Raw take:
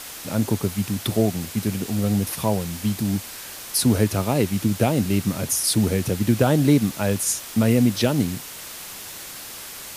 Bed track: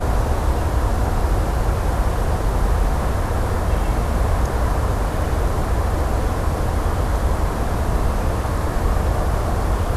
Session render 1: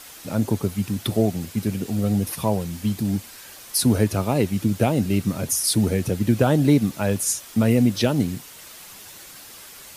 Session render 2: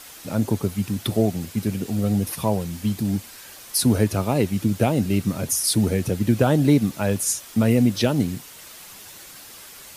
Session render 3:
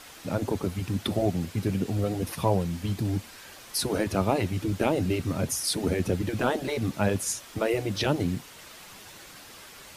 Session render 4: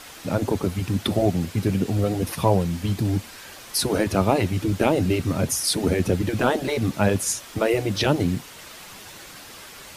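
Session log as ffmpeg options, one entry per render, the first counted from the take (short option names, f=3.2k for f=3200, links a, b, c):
-af "afftdn=nr=7:nf=-37"
-af anull
-af "lowpass=f=3.7k:p=1,afftfilt=real='re*lt(hypot(re,im),0.631)':imag='im*lt(hypot(re,im),0.631)':win_size=1024:overlap=0.75"
-af "volume=5dB"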